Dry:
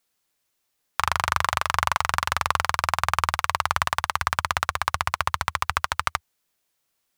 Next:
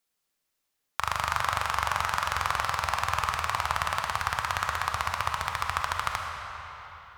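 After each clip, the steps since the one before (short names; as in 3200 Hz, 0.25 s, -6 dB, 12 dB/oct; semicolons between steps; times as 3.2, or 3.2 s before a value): digital reverb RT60 4.1 s, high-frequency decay 0.75×, pre-delay 5 ms, DRR 1.5 dB; gain -6 dB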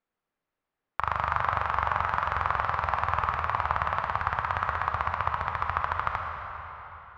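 LPF 1600 Hz 12 dB/oct; gain +2.5 dB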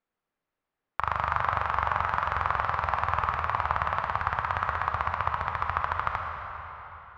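nothing audible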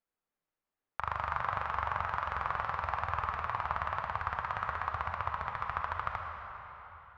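flange 0.98 Hz, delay 1.1 ms, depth 5.6 ms, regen -61%; gain -2.5 dB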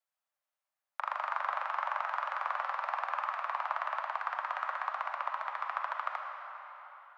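steep high-pass 540 Hz 96 dB/oct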